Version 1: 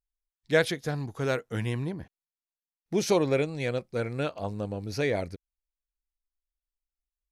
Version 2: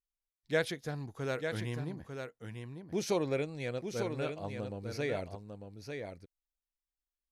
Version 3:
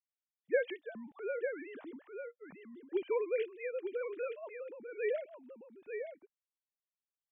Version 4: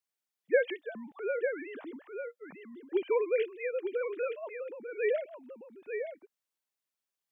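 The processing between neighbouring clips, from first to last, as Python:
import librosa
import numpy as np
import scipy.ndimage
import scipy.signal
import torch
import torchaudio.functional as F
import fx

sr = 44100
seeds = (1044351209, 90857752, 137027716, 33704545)

y1 = x + 10.0 ** (-6.5 / 20.0) * np.pad(x, (int(897 * sr / 1000.0), 0))[:len(x)]
y1 = y1 * 10.0 ** (-7.5 / 20.0)
y2 = fx.sine_speech(y1, sr)
y2 = y2 * 10.0 ** (-2.0 / 20.0)
y3 = fx.highpass(y2, sr, hz=200.0, slope=6)
y3 = y3 * 10.0 ** (5.5 / 20.0)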